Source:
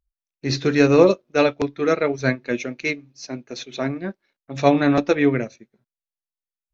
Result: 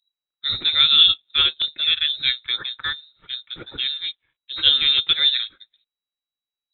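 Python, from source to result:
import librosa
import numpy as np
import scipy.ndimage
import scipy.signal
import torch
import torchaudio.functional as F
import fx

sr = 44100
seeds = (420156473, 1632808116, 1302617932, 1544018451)

y = fx.freq_invert(x, sr, carrier_hz=3900)
y = fx.dynamic_eq(y, sr, hz=1700.0, q=0.95, threshold_db=-29.0, ratio=4.0, max_db=-3)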